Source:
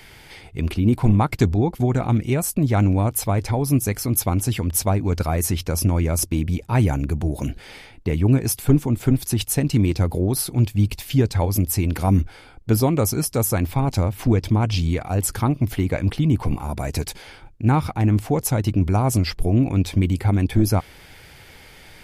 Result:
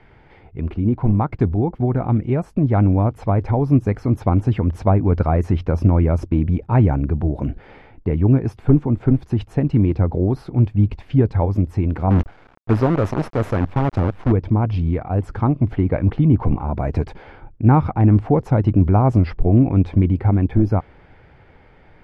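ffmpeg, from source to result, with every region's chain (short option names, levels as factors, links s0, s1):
-filter_complex "[0:a]asettb=1/sr,asplit=3[s0][s1][s2];[s0]atrim=end=12.104[s3];[s1]atrim=start=12.1:end=14.32,asetpts=PTS-STARTPTS,afade=t=in:d=0.004:c=qsin,afade=t=out:st=2.216:d=0.004:c=qsin,highshelf=f=2600:g=8,acrusher=bits=4:dc=4:mix=0:aa=0.000001[s4];[s2]atrim=start=14.316[s5];[s3][s4]acrossfade=d=0.004:c1=hsin:c2=qsin[s6];[s6][s5]acrossfade=d=0.004:c1=qsin:c2=hsin,dynaudnorm=f=350:g=11:m=3.76,lowpass=1300,volume=0.891"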